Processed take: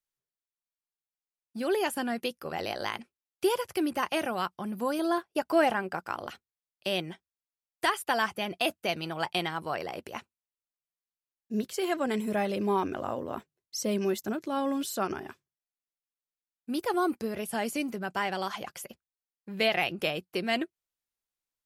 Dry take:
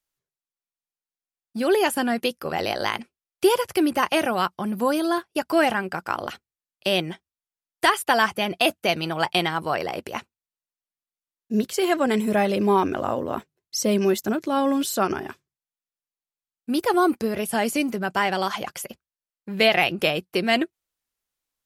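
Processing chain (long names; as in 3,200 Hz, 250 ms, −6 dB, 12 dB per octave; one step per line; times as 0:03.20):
0:04.99–0:06.01: parametric band 630 Hz +5 dB 2.2 octaves
level −8 dB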